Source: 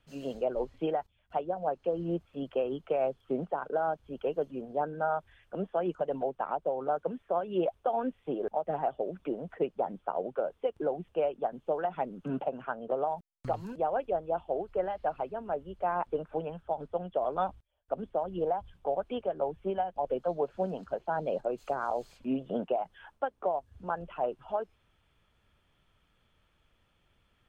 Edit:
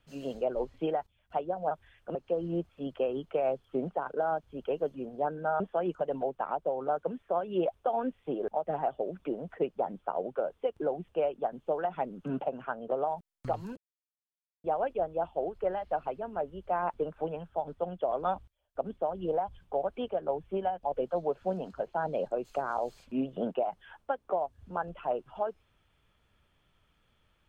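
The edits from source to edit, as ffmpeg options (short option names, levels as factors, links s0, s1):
-filter_complex "[0:a]asplit=5[s0][s1][s2][s3][s4];[s0]atrim=end=1.712[s5];[s1]atrim=start=5.158:end=5.602[s6];[s2]atrim=start=1.708:end=5.162[s7];[s3]atrim=start=5.598:end=13.77,asetpts=PTS-STARTPTS,afade=t=out:st=8.168:d=0.004:c=hsin,apad=pad_dur=0.87[s8];[s4]atrim=start=13.77,asetpts=PTS-STARTPTS,afade=t=in:d=0.004:c=hsin[s9];[s5][s6]acrossfade=d=0.004:c1=hsin:c2=hsin[s10];[s10][s7]acrossfade=d=0.004:c1=hsin:c2=hsin[s11];[s8][s9]concat=n=2:v=0:a=1[s12];[s11][s12]acrossfade=d=0.004:c1=hsin:c2=hsin"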